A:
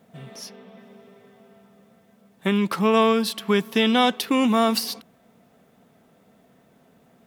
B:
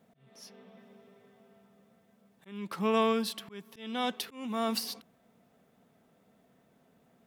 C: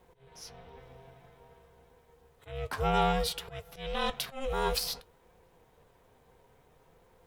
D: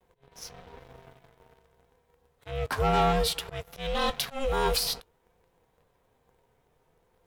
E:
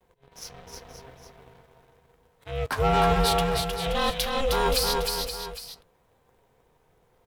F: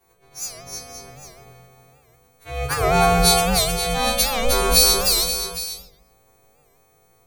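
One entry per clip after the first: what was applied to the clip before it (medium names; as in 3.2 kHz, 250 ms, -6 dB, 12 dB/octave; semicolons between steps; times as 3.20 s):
slow attack 456 ms; trim -8.5 dB
in parallel at 0 dB: peak limiter -26.5 dBFS, peak gain reduction 11.5 dB; on the sum: ring modulator 270 Hz; flange 0.56 Hz, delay 5.5 ms, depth 2.4 ms, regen +69%; trim +5 dB
waveshaping leveller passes 2; vibrato 0.55 Hz 40 cents; trim -2 dB
multi-tap echo 311/524/809 ms -4/-10/-14 dB; trim +2 dB
partials quantised in pitch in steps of 2 st; simulated room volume 1900 m³, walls furnished, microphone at 3.4 m; warped record 78 rpm, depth 160 cents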